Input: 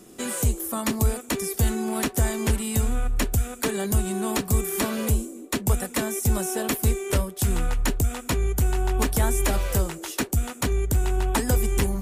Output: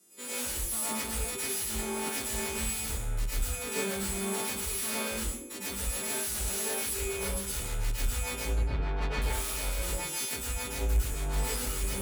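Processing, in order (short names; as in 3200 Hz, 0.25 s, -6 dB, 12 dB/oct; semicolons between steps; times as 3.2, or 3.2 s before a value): frequency quantiser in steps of 2 st; 8.54–9.22 elliptic low-pass 4400 Hz; soft clip -21 dBFS, distortion -10 dB; added harmonics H 7 -10 dB, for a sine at -9 dBFS; reverb RT60 0.35 s, pre-delay 98 ms, DRR -5 dB; three-band expander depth 70%; gain -7.5 dB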